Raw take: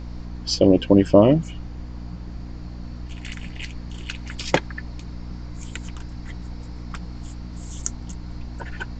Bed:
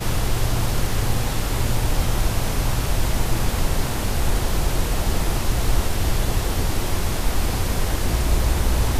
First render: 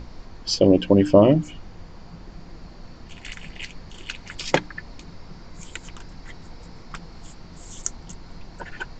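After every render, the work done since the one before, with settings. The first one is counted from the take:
mains-hum notches 60/120/180/240/300 Hz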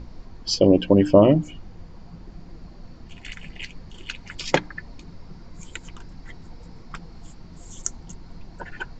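broadband denoise 6 dB, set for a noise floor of −43 dBFS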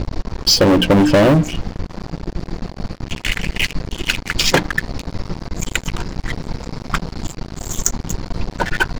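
leveller curve on the samples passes 5
downward compressor, threshold −10 dBFS, peak gain reduction 6 dB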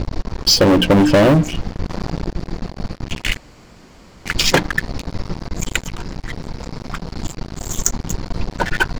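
0:01.78–0:02.32: envelope flattener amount 50%
0:03.37–0:04.25: fill with room tone
0:05.85–0:07.12: downward compressor 4 to 1, threshold −21 dBFS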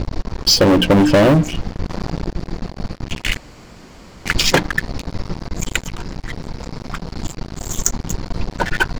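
0:03.33–0:04.39: clip gain +3.5 dB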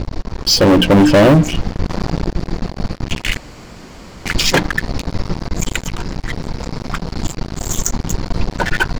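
brickwall limiter −10 dBFS, peak gain reduction 8 dB
automatic gain control gain up to 5 dB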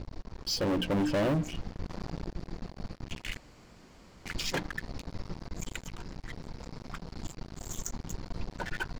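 level −19 dB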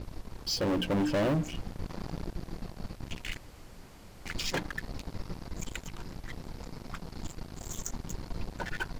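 mix in bed −31 dB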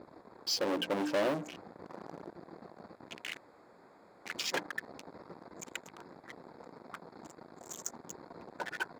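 adaptive Wiener filter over 15 samples
high-pass filter 370 Hz 12 dB per octave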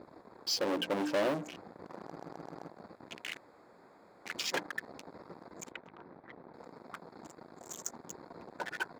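0:02.03: stutter in place 0.13 s, 5 plays
0:05.71–0:06.54: high-frequency loss of the air 350 metres

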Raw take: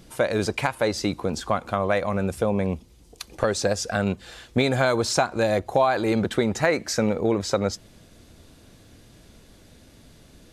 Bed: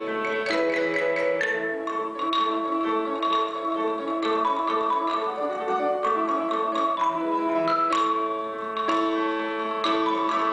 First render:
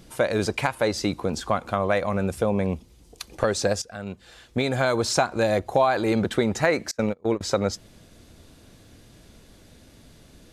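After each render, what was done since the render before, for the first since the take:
0:03.82–0:05.08: fade in, from −16.5 dB
0:06.91–0:07.41: noise gate −22 dBFS, range −30 dB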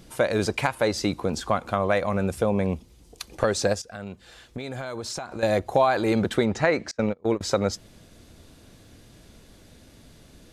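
0:03.74–0:05.43: downward compressor, threshold −30 dBFS
0:06.45–0:07.24: high-frequency loss of the air 78 metres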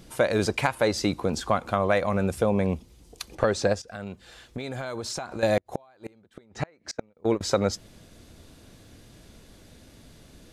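0:03.35–0:03.88: low-pass filter 3,900 Hz 6 dB per octave
0:05.57–0:07.17: gate with flip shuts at −15 dBFS, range −35 dB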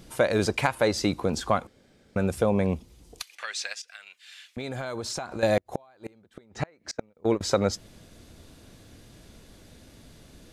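0:01.67–0:02.16: fill with room tone
0:03.22–0:04.57: high-pass with resonance 2,300 Hz, resonance Q 1.9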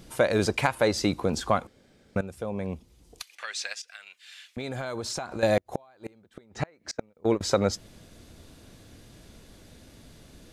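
0:02.21–0:03.75: fade in, from −14.5 dB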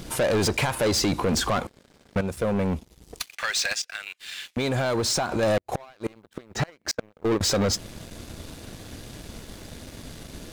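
brickwall limiter −17.5 dBFS, peak gain reduction 10.5 dB
leveller curve on the samples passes 3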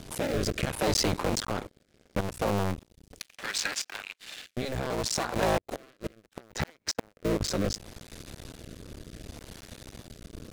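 sub-harmonics by changed cycles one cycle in 2, muted
rotating-speaker cabinet horn 0.7 Hz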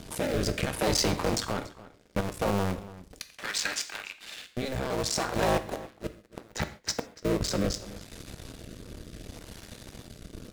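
slap from a distant wall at 49 metres, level −17 dB
reverb whose tail is shaped and stops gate 170 ms falling, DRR 9.5 dB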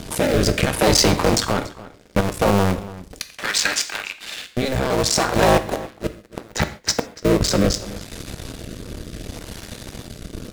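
level +10.5 dB

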